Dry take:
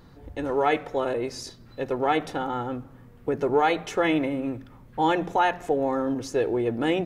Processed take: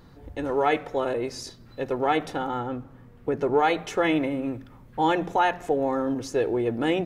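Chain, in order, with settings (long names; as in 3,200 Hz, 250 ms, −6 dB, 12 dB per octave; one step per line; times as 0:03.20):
0:02.59–0:03.62: high-shelf EQ 5,100 Hz → 8,700 Hz −6 dB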